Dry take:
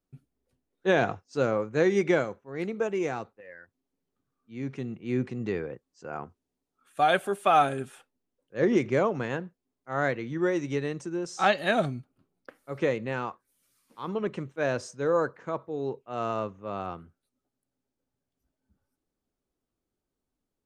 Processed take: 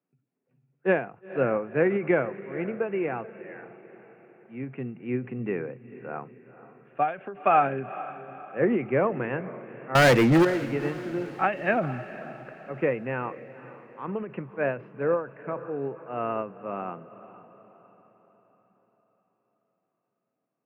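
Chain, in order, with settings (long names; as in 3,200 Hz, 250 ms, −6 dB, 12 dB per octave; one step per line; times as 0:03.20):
Chebyshev band-pass filter 120–2,700 Hz, order 5
0:09.95–0:10.45: leveller curve on the samples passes 5
feedback delay with all-pass diffusion 472 ms, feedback 48%, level −15.5 dB
every ending faded ahead of time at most 150 dB per second
level +1.5 dB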